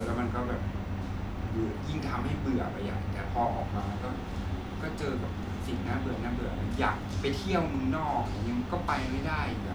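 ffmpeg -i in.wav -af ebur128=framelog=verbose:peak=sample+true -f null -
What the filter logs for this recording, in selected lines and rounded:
Integrated loudness:
  I:         -32.5 LUFS
  Threshold: -42.5 LUFS
Loudness range:
  LRA:         2.8 LU
  Threshold: -52.6 LUFS
  LRA low:   -33.9 LUFS
  LRA high:  -31.0 LUFS
Sample peak:
  Peak:      -14.1 dBFS
True peak:
  Peak:      -14.1 dBFS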